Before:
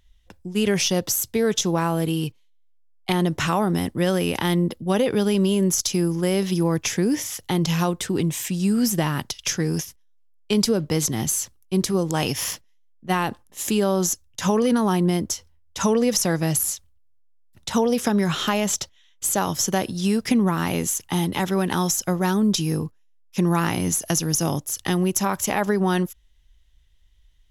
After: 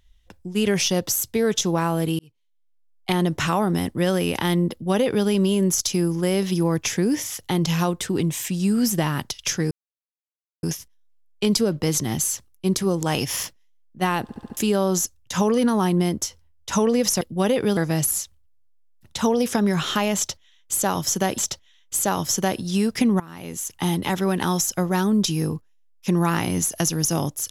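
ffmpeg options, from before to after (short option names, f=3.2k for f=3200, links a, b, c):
-filter_complex "[0:a]asplit=12[a][b][c][d][e][f][g][h][i][j][k][l];[a]atrim=end=2.19,asetpts=PTS-STARTPTS,afade=t=out:st=2.186:d=0.004:c=hsin[m];[b]atrim=start=2.19:end=9.71,asetpts=PTS-STARTPTS,afade=t=in:d=0.91,afade=t=out:st=7.516:d=0.004:c=hsin,apad=pad_dur=0.92[n];[c]atrim=start=9.71:end=13.372,asetpts=PTS-STARTPTS,afade=t=in:d=0.004:c=hsin[o];[d]atrim=start=13.298:end=13.372[p];[e]atrim=start=13.298:end=13.372[q];[f]atrim=start=13.298:end=13.372[r];[g]atrim=start=13.298:end=13.372[s];[h]atrim=start=13.648:end=16.292[t];[i]atrim=start=4.708:end=5.272[u];[j]atrim=start=16.288:end=19.902[v];[k]atrim=start=18.678:end=20.5,asetpts=PTS-STARTPTS,afade=t=out:st=1.818:d=0.004:c=hsin:silence=0.125893[w];[l]atrim=start=20.5,asetpts=PTS-STARTPTS,afade=t=in:d=0.6:c=qua:silence=0.125893[x];[m][n][o]concat=n=3:v=0:a=1[y];[y][p]acrossfade=d=0.004:c1=hsin:c2=hsin[z];[z][q]acrossfade=d=0.004:c1=hsin:c2=hsin[aa];[aa][r]acrossfade=d=0.004:c1=hsin:c2=hsin[ab];[ab][s]acrossfade=d=0.004:c1=hsin:c2=hsin[ac];[ac][t]acrossfade=d=0.004:c1=hsin:c2=hsin[ad];[ad][u]acrossfade=d=0.004:c1=hsin:c2=hsin[ae];[ae][v]acrossfade=d=0.004:c1=hsin:c2=hsin[af];[w][x]concat=n=2:v=0:a=1[ag];[af][ag]acrossfade=d=0.004:c1=hsin:c2=hsin"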